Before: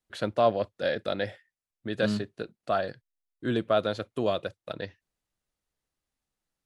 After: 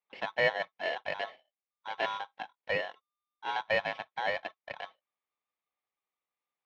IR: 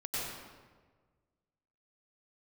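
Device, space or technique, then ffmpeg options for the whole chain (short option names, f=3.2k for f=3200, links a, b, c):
ring modulator pedal into a guitar cabinet: -af "aeval=exprs='val(0)*sgn(sin(2*PI*1200*n/s))':c=same,highpass=100,equalizer=f=120:t=q:w=4:g=-4,equalizer=f=520:t=q:w=4:g=5,equalizer=f=800:t=q:w=4:g=6,equalizer=f=1.4k:t=q:w=4:g=-7,equalizer=f=2.2k:t=q:w=4:g=8,lowpass=f=3.5k:w=0.5412,lowpass=f=3.5k:w=1.3066,volume=-7dB"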